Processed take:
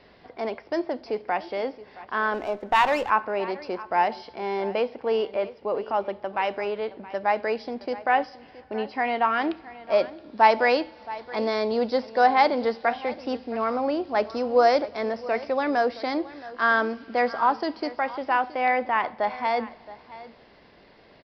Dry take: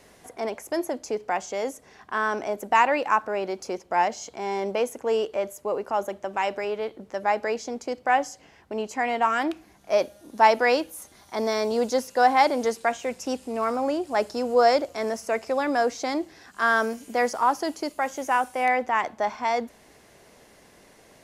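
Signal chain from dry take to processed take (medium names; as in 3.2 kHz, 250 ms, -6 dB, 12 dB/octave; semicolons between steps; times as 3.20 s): resampled via 11.025 kHz; on a send: delay 671 ms -17.5 dB; on the sum: two-slope reverb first 0.48 s, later 3.5 s, from -16 dB, DRR 17.5 dB; 2.34–3.10 s: sliding maximum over 5 samples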